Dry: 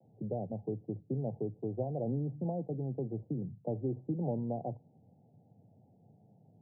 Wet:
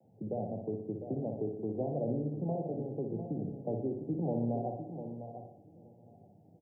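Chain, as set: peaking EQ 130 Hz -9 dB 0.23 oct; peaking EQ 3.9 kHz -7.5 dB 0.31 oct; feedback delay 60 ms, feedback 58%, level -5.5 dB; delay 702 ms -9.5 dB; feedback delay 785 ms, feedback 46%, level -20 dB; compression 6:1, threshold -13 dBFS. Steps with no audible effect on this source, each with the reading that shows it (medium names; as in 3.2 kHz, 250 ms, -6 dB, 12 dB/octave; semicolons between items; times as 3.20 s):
peaking EQ 3.9 kHz: input has nothing above 850 Hz; compression, threshold -13 dBFS: peak at its input -21.0 dBFS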